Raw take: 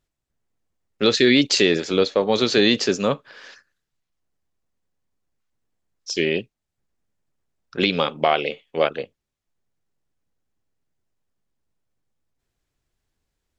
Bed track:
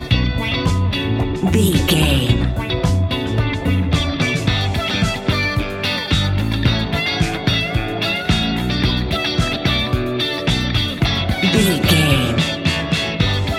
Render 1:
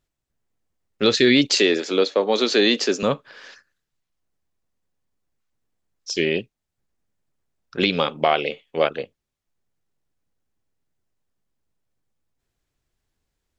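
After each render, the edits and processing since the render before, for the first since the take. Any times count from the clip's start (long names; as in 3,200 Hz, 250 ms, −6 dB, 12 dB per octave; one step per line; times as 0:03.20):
0:01.59–0:03.03: high-pass filter 230 Hz 24 dB per octave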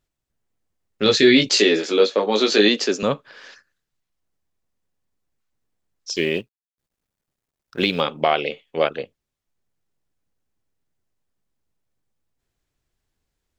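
0:01.04–0:02.69: double-tracking delay 19 ms −3 dB
0:06.16–0:08.01: mu-law and A-law mismatch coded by A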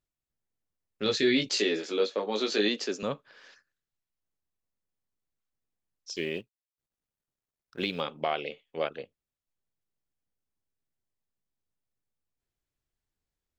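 level −11 dB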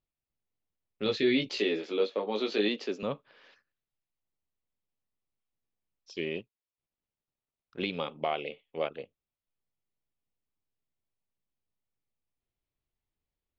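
Chebyshev low-pass filter 2,800 Hz, order 2
parametric band 1,600 Hz −7 dB 0.57 octaves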